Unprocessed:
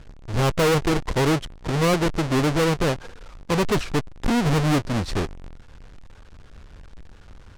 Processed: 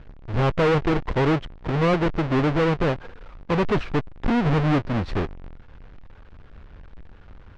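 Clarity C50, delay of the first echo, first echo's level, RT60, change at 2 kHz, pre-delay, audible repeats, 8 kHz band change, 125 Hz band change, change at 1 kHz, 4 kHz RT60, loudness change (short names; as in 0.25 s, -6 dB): none, none, none, none, -1.0 dB, none, none, under -15 dB, 0.0 dB, 0.0 dB, none, -0.5 dB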